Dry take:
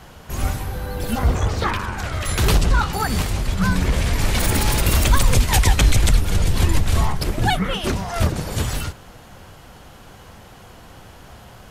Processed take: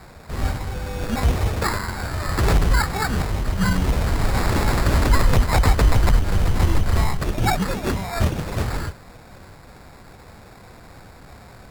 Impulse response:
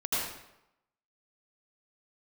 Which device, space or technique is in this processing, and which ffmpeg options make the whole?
crushed at another speed: -af "asetrate=22050,aresample=44100,acrusher=samples=29:mix=1:aa=0.000001,asetrate=88200,aresample=44100,volume=-1dB"

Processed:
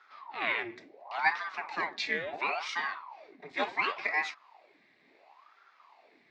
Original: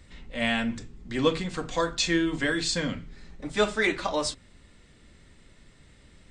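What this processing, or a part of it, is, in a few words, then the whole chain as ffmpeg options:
voice changer toy: -af "aeval=exprs='val(0)*sin(2*PI*750*n/s+750*0.85/0.71*sin(2*PI*0.71*n/s))':channel_layout=same,highpass=500,equalizer=frequency=510:width_type=q:width=4:gain=-8,equalizer=frequency=1400:width_type=q:width=4:gain=-8,equalizer=frequency=2100:width_type=q:width=4:gain=7,equalizer=frequency=3100:width_type=q:width=4:gain=-10,lowpass=frequency=4100:width=0.5412,lowpass=frequency=4100:width=1.3066"

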